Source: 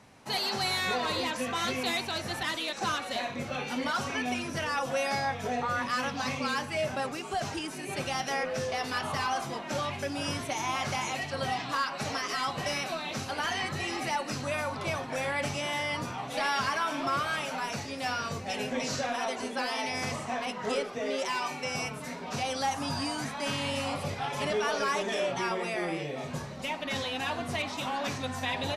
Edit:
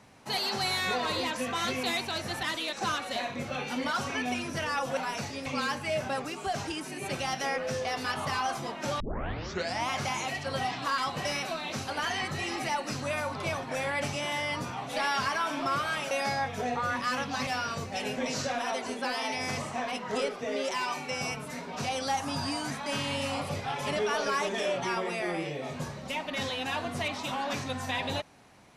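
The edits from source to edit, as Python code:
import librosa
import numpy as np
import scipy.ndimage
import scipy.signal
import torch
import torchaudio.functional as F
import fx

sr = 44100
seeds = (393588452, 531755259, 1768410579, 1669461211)

y = fx.edit(x, sr, fx.swap(start_s=4.97, length_s=1.36, other_s=17.52, other_length_s=0.49),
    fx.tape_start(start_s=9.87, length_s=0.89),
    fx.cut(start_s=11.85, length_s=0.54), tone=tone)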